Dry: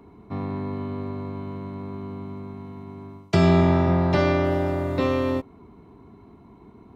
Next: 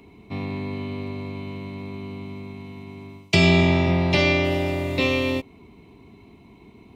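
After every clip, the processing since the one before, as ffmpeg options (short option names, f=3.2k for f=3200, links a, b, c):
-af "highshelf=f=1.9k:t=q:w=3:g=8"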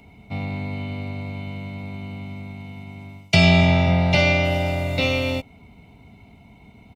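-af "aecho=1:1:1.4:0.73"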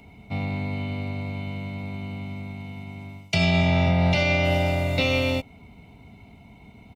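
-af "alimiter=limit=-12dB:level=0:latency=1:release=117"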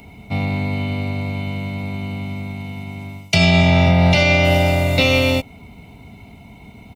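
-af "highshelf=f=6.9k:g=7,volume=7dB"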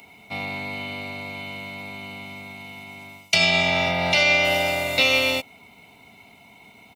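-af "highpass=f=1k:p=1"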